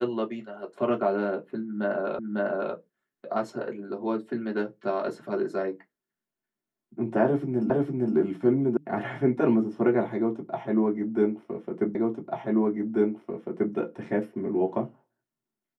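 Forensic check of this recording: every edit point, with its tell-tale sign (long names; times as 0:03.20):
0:02.19: the same again, the last 0.55 s
0:07.70: the same again, the last 0.46 s
0:08.77: cut off before it has died away
0:11.95: the same again, the last 1.79 s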